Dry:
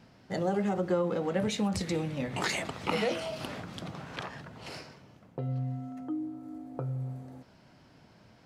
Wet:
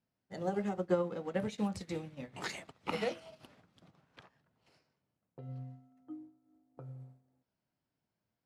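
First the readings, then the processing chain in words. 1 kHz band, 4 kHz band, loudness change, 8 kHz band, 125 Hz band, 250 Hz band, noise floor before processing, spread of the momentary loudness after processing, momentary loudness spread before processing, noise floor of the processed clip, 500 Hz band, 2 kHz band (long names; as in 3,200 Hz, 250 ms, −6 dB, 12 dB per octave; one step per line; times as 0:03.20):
−7.0 dB, −10.5 dB, −5.0 dB, −11.5 dB, −10.0 dB, −7.0 dB, −59 dBFS, 18 LU, 15 LU, below −85 dBFS, −5.5 dB, −8.5 dB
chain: expander for the loud parts 2.5 to 1, over −44 dBFS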